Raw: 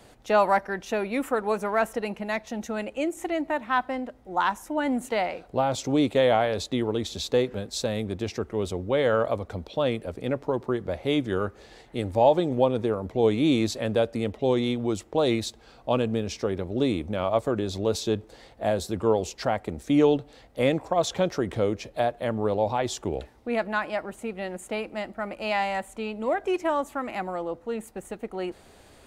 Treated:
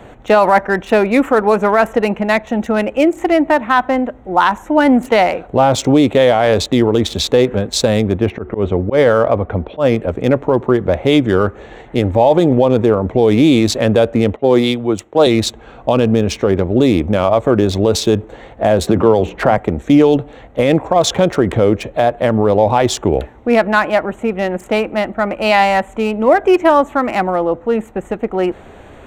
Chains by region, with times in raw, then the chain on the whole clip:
8.18–9.96 LPF 2800 Hz + de-hum 365.2 Hz, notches 2 + auto swell 0.108 s
14.36–15.27 HPF 190 Hz 6 dB/oct + three-band expander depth 100%
18.87–19.58 Bessel low-pass 2800 Hz + notches 60/120/180/240/300 Hz + three-band squash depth 100%
whole clip: Wiener smoothing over 9 samples; maximiser +16.5 dB; gain -1 dB

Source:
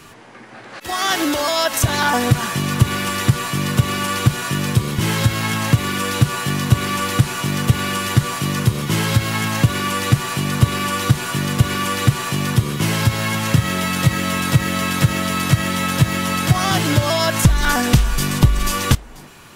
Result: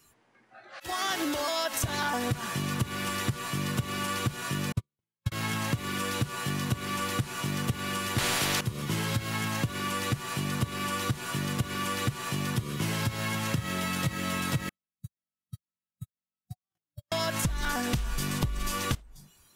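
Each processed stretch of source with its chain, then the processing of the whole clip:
4.72–5.32 gate -13 dBFS, range -43 dB + high shelf 9000 Hz -4.5 dB + three-band expander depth 100%
8.18–8.61 tone controls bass +7 dB, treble -9 dB + spectral compressor 4:1
14.69–17.12 gate -11 dBFS, range -59 dB + high shelf 7600 Hz +10.5 dB + compressor 2:1, threshold -39 dBFS
whole clip: spectral noise reduction 15 dB; compressor 4:1, threshold -17 dBFS; gain -9 dB

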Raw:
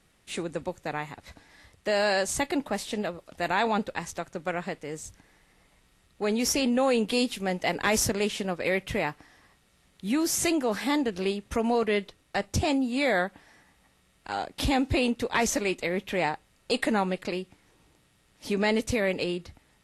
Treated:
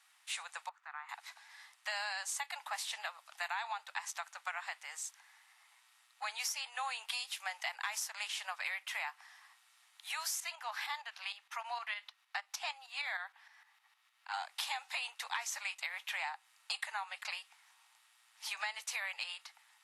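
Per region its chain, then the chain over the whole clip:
0.69–1.09 compressor 3:1, threshold -33 dBFS + band-pass 1300 Hz, Q 2.5
10.4–14.34 HPF 530 Hz 6 dB/oct + bell 8700 Hz -9.5 dB 1 oct + tremolo saw up 6.5 Hz, depth 60%
whole clip: steep high-pass 810 Hz 48 dB/oct; compressor 12:1, threshold -35 dBFS

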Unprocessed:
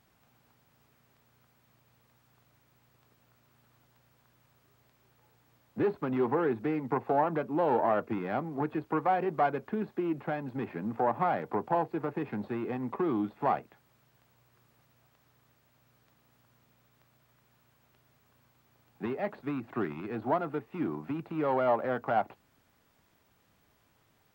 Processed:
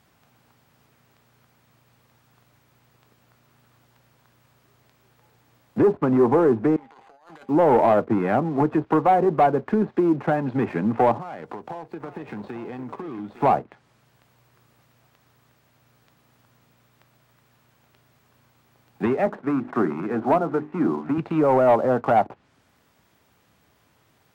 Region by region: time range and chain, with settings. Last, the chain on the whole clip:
6.76–7.49 differentiator + negative-ratio compressor -57 dBFS + decimation joined by straight lines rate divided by 8×
11.17–13.42 compressor 10:1, threshold -43 dBFS + echo 0.854 s -11.5 dB
19.26–21.18 Chebyshev band-pass 170–1500 Hz + notches 50/100/150/200/250/300/350/400 Hz
whole clip: HPF 55 Hz 12 dB/oct; treble ducked by the level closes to 1000 Hz, closed at -27 dBFS; sample leveller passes 1; gain +8.5 dB

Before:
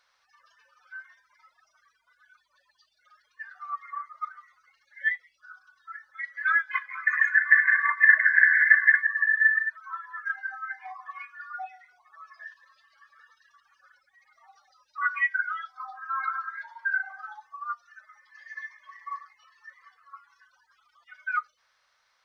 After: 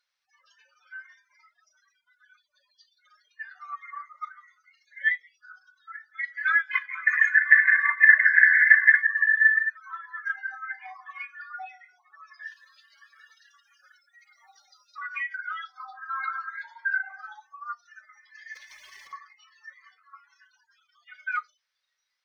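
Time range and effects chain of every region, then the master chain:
12.43–15.45 high shelf 2400 Hz +4 dB + compressor 8:1, threshold -31 dBFS + whine 1400 Hz -73 dBFS
18.55–19.13 compressor 12:1, threshold -43 dBFS + spectral compressor 2:1
whole clip: notch 660 Hz, Q 12; spectral noise reduction 16 dB; EQ curve 630 Hz 0 dB, 1100 Hz -3 dB, 2400 Hz +7 dB; gain -1 dB

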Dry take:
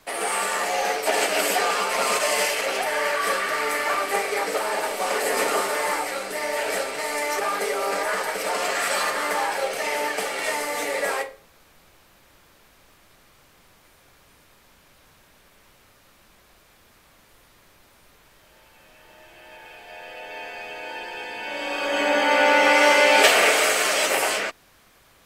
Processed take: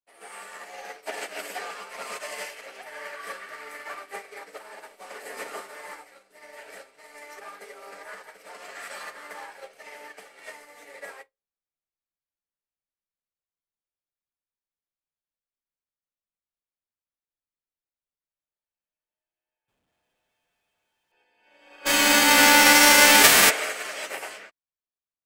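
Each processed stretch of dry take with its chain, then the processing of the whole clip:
19.68–21.12 HPF 1100 Hz 6 dB/oct + bell 3400 Hz +12 dB 0.25 oct + Schmitt trigger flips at -42 dBFS
21.85–23.49 spectral whitening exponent 0.3 + fast leveller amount 70%
whole clip: dynamic EQ 1800 Hz, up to +4 dB, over -34 dBFS, Q 1.7; upward expander 2.5:1, over -43 dBFS

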